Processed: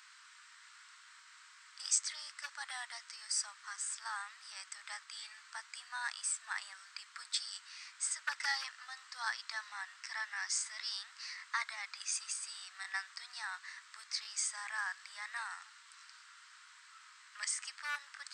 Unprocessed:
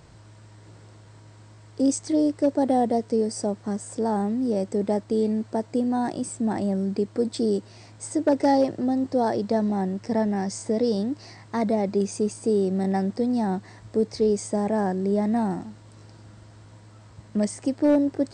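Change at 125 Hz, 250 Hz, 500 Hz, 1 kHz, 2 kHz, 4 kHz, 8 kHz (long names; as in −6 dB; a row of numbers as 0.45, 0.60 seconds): below −40 dB, below −40 dB, below −40 dB, −16.0 dB, +3.5 dB, +1.5 dB, +0.5 dB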